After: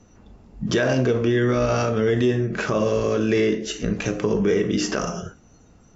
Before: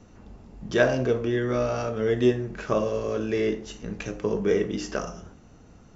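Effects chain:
noise reduction from a noise print of the clip's start 15 dB
dynamic equaliser 680 Hz, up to −4 dB, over −34 dBFS, Q 0.93
in parallel at +2 dB: downward compressor, threshold −37 dBFS, peak gain reduction 19 dB
on the sum: brickwall limiter −18 dBFS, peak gain reduction 10 dB
level +6.5 dB

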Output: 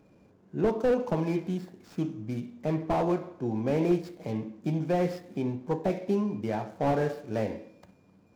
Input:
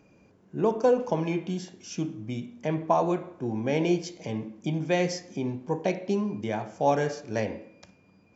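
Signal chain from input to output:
running median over 15 samples
slew-rate limiting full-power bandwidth 44 Hz

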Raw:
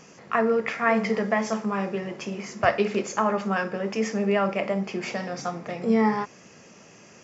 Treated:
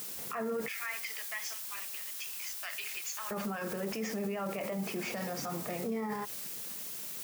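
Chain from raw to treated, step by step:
spectral magnitudes quantised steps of 15 dB
0:00.68–0:03.31: Chebyshev high-pass filter 2,800 Hz, order 2
dead-zone distortion −53 dBFS
background noise blue −43 dBFS
brickwall limiter −29 dBFS, peak gain reduction 18.5 dB
level +1.5 dB

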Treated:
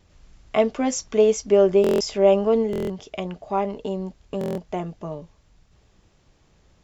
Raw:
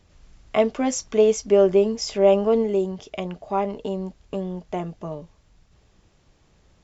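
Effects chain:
pitch vibrato 0.71 Hz 6.4 cents
buffer that repeats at 0:01.82/0:02.71/0:04.39, samples 1,024, times 7

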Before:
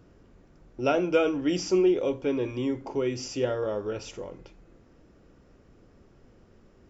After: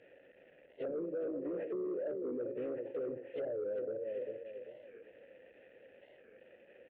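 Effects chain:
linear delta modulator 16 kbit/s, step −37 dBFS
noise gate −32 dBFS, range −18 dB
pitch-shifted copies added +3 semitones −11 dB
formant filter e
treble cut that deepens with the level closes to 320 Hz, closed at −34.5 dBFS
repeating echo 394 ms, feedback 37%, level −10 dB
reversed playback
downward compressor, threshold −39 dBFS, peak gain reduction 5.5 dB
reversed playback
soft clipping −36.5 dBFS, distortion −20 dB
brickwall limiter −45.5 dBFS, peak gain reduction 8 dB
wow of a warped record 45 rpm, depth 160 cents
level +13 dB

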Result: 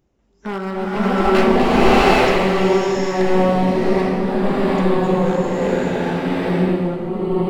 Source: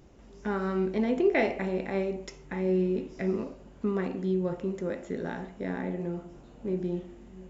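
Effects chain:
wavefolder on the positive side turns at −27 dBFS
noise reduction from a noise print of the clip's start 17 dB
slow-attack reverb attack 790 ms, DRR −10.5 dB
level +6 dB

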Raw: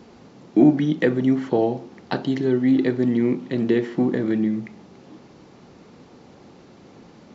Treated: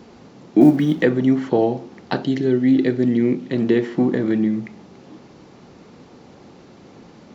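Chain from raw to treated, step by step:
0:00.61–0:01.02: mu-law and A-law mismatch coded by mu
0:02.24–0:03.50: parametric band 1,000 Hz −8 dB 0.68 octaves
level +2.5 dB

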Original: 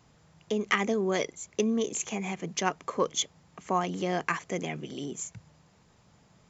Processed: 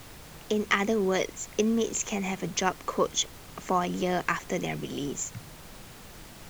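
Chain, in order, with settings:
in parallel at 0 dB: downward compressor, threshold −39 dBFS, peak gain reduction 17.5 dB
on the sum: background noise pink −47 dBFS

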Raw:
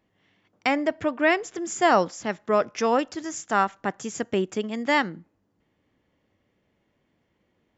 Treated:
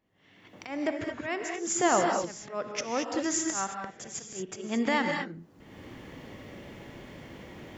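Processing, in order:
camcorder AGC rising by 39 dB per second
volume swells 190 ms
reverb whose tail is shaped and stops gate 250 ms rising, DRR 2.5 dB
level −6.5 dB

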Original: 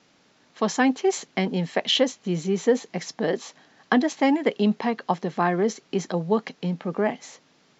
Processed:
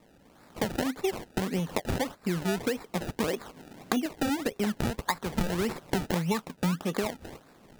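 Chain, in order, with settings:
camcorder AGC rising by 10 dB per second
0:03.42–0:04.06: tilt shelving filter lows +8 dB, about 700 Hz
0:04.64–0:06.45: gain on a spectral selection 850–6,400 Hz +11 dB
0:05.38–0:06.84: low-shelf EQ 250 Hz +11.5 dB
sample-and-hold swept by an LFO 28×, swing 100% 1.7 Hz
downward compressor 6 to 1, threshold −26 dBFS, peak gain reduction 17.5 dB

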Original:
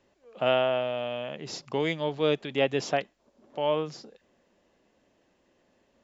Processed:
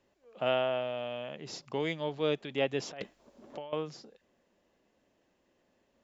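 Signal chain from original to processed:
0:02.91–0:03.73: compressor whose output falls as the input rises −37 dBFS, ratio −1
level −5 dB

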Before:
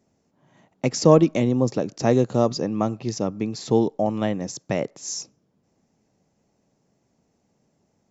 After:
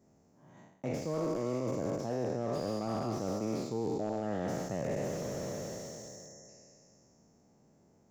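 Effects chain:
peak hold with a decay on every bin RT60 2.76 s
in parallel at −3 dB: brickwall limiter −11.5 dBFS, peak gain reduction 11.5 dB
on the sum: parametric band 3,200 Hz −9 dB 1.5 octaves
reversed playback
downward compressor 10 to 1, threshold −25 dBFS, peak gain reduction 20 dB
reversed playback
time-frequency box erased 0:05.22–0:06.48, 2,100–5,400 Hz
slew-rate limiting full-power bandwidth 38 Hz
level −5.5 dB

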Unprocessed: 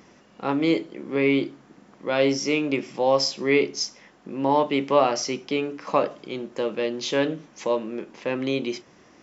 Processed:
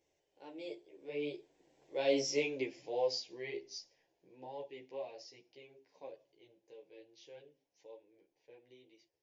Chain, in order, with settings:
source passing by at 0:02.25, 22 m/s, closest 8.6 metres
phaser with its sweep stopped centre 520 Hz, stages 4
string-ensemble chorus
level −4 dB

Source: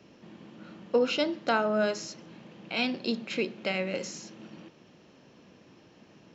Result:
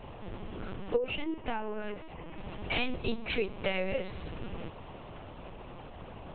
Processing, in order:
downward compressor 2.5 to 1, threshold −40 dBFS, peak gain reduction 13.5 dB
0:00.97–0:02.38: phaser with its sweep stopped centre 900 Hz, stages 8
noise in a band 400–1,100 Hz −59 dBFS
on a send at −21 dB: convolution reverb RT60 5.0 s, pre-delay 18 ms
on the sum: linear-prediction vocoder at 8 kHz pitch kept
level +8.5 dB

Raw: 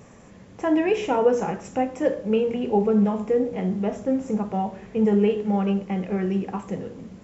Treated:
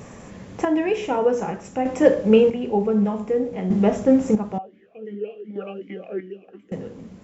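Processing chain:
square-wave tremolo 0.54 Hz, depth 60%, duty 35%
0:04.58–0:06.72: formant filter swept between two vowels a-i 2.7 Hz
level +7.5 dB

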